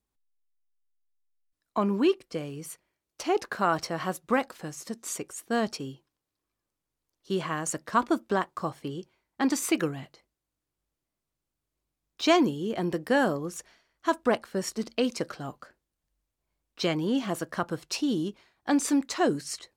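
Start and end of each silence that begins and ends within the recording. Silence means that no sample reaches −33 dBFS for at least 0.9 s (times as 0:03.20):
0:05.90–0:07.30
0:10.03–0:12.20
0:15.63–0:16.80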